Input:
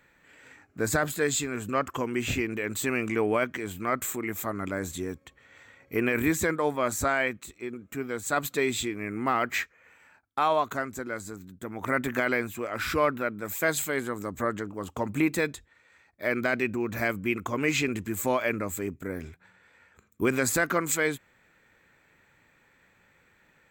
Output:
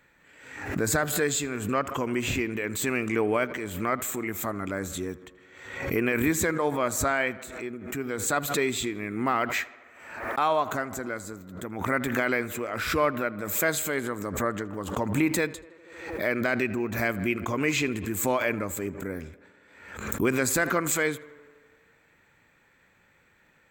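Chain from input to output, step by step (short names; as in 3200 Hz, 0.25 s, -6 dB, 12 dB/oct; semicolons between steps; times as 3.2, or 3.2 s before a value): tape echo 80 ms, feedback 78%, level -18.5 dB, low-pass 3100 Hz; backwards sustainer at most 64 dB/s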